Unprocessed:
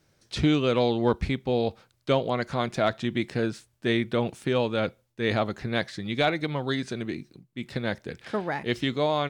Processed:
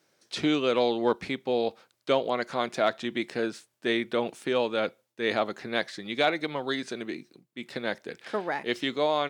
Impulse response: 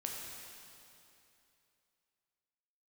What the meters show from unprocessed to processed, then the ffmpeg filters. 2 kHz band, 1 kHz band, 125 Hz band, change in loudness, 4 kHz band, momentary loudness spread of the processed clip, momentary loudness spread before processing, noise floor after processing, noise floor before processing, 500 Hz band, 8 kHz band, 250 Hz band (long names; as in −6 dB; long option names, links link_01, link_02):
0.0 dB, 0.0 dB, −13.5 dB, −1.5 dB, 0.0 dB, 10 LU, 9 LU, −76 dBFS, −69 dBFS, −0.5 dB, 0.0 dB, −3.5 dB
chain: -af "highpass=290"